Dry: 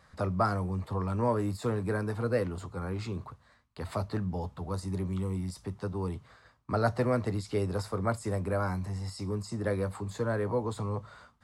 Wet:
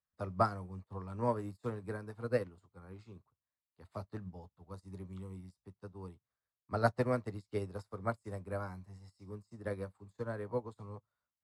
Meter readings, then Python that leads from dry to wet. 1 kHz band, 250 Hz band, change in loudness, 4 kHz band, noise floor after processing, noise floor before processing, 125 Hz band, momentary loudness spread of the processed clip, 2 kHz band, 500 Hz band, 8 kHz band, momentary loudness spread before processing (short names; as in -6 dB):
-5.0 dB, -9.5 dB, -6.5 dB, -11.0 dB, under -85 dBFS, -63 dBFS, -10.0 dB, 20 LU, -6.0 dB, -6.5 dB, -15.0 dB, 9 LU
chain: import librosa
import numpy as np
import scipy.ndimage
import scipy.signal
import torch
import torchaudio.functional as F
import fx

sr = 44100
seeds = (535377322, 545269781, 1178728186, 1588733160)

y = fx.upward_expand(x, sr, threshold_db=-48.0, expansion=2.5)